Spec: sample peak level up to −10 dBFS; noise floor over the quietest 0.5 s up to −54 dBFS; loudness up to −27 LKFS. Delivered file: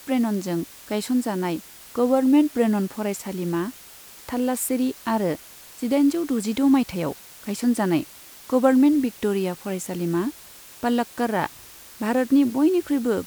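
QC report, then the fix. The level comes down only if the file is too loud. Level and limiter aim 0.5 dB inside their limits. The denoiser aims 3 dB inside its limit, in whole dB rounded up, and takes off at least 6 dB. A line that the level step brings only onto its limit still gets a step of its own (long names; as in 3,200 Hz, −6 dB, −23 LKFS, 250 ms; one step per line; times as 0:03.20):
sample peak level −6.0 dBFS: out of spec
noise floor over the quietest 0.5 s −45 dBFS: out of spec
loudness −23.5 LKFS: out of spec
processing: broadband denoise 8 dB, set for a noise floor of −45 dBFS
level −4 dB
brickwall limiter −10.5 dBFS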